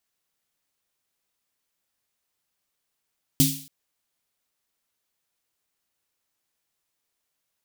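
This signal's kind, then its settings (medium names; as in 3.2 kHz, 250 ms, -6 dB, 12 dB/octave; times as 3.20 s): snare drum length 0.28 s, tones 150 Hz, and 270 Hz, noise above 2.9 kHz, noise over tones -1 dB, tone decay 0.40 s, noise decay 0.49 s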